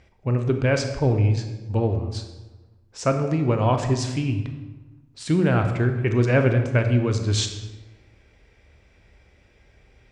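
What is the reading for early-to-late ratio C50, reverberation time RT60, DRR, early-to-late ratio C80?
8.0 dB, 1.2 s, 6.0 dB, 9.5 dB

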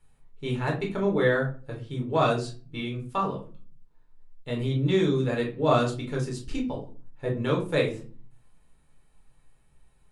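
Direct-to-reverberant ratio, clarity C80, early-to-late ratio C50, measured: -1.0 dB, 15.5 dB, 10.0 dB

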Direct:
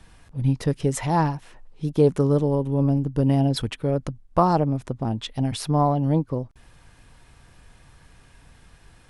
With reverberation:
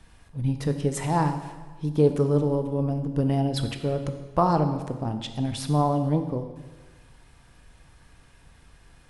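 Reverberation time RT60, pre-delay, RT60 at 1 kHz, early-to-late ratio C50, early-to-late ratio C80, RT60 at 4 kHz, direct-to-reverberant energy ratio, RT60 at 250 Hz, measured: 1.4 s, 7 ms, 1.4 s, 9.0 dB, 10.5 dB, 1.3 s, 7.0 dB, 1.4 s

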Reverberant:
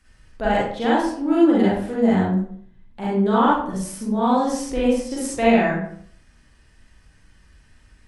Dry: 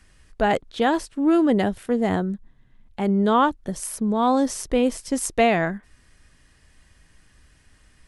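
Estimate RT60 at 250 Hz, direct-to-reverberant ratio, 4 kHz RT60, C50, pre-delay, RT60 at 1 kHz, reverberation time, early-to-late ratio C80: 0.65 s, -7.5 dB, 0.40 s, -1.0 dB, 35 ms, 0.55 s, 0.60 s, 5.0 dB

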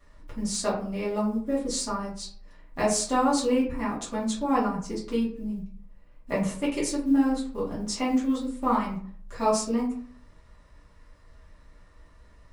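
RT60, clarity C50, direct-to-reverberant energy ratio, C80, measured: 0.55 s, 7.0 dB, -9.0 dB, 11.0 dB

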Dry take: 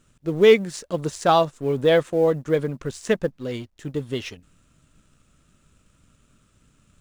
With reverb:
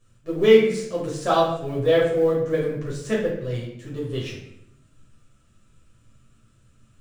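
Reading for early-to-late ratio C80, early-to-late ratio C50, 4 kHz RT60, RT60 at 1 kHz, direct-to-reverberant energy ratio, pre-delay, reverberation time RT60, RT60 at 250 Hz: 7.5 dB, 4.0 dB, 0.60 s, 0.65 s, -6.5 dB, 8 ms, 0.75 s, 0.95 s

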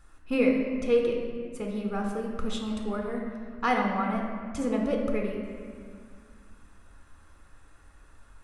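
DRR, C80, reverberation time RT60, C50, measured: 0.5 dB, 4.5 dB, 2.1 s, 3.0 dB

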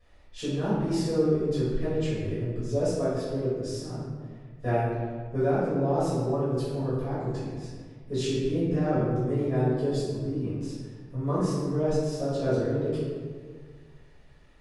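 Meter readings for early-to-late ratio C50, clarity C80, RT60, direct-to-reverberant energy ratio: -2.0 dB, 0.5 dB, 1.7 s, -14.5 dB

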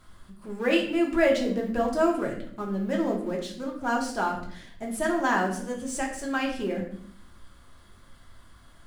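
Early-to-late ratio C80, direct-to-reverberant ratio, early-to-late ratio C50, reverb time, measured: 10.5 dB, -1.0 dB, 7.0 dB, 0.60 s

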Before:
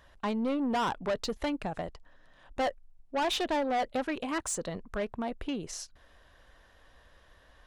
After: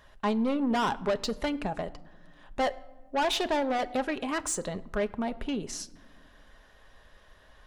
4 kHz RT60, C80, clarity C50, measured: n/a, 21.0 dB, 19.5 dB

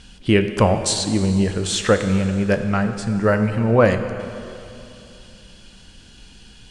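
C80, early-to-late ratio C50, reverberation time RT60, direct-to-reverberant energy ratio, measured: 9.5 dB, 8.5 dB, 2.8 s, 7.5 dB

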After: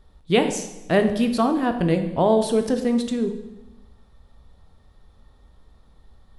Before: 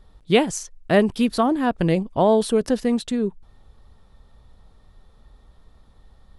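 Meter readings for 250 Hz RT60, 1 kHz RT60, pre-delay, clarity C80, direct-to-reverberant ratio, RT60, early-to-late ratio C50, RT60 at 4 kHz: 1.3 s, 0.95 s, 12 ms, 11.5 dB, 6.5 dB, 1.1 s, 9.5 dB, 0.90 s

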